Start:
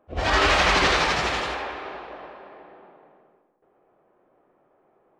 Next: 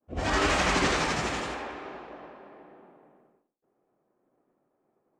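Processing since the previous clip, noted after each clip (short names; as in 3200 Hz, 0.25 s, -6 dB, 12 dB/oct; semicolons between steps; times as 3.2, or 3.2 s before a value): ten-band EQ 125 Hz +5 dB, 250 Hz +8 dB, 4000 Hz -4 dB, 8000 Hz +9 dB; expander -54 dBFS; gain -6.5 dB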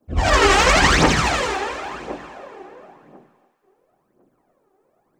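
phaser 0.95 Hz, delay 2.7 ms, feedback 69%; thinning echo 0.287 s, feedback 42%, high-pass 560 Hz, level -13 dB; gain +8 dB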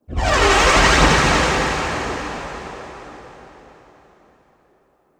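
plate-style reverb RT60 4.3 s, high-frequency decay 0.85×, DRR -0.5 dB; gain -1.5 dB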